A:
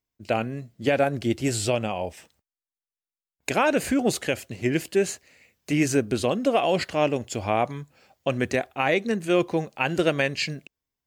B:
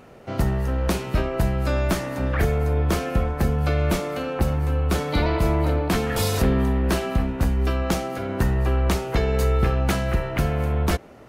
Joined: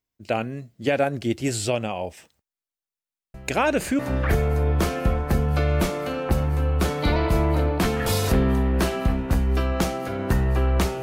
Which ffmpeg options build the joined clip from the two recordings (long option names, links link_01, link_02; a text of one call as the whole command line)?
ffmpeg -i cue0.wav -i cue1.wav -filter_complex "[1:a]asplit=2[link_01][link_02];[0:a]apad=whole_dur=11.02,atrim=end=11.02,atrim=end=3.992[link_03];[link_02]atrim=start=2.088:end=9.12[link_04];[link_01]atrim=start=1.44:end=2.09,asetpts=PTS-STARTPTS,volume=-18dB,afade=type=in:duration=0.004:curve=hsin,afade=type=out:start_time=0.646:duration=0.004:curve=hsin,adelay=3340[link_05];[link_03][link_04]acrossfade=duration=0.004:curve1=hsin:curve2=hsin[link_06];[link_06][link_05]amix=inputs=2:normalize=0" out.wav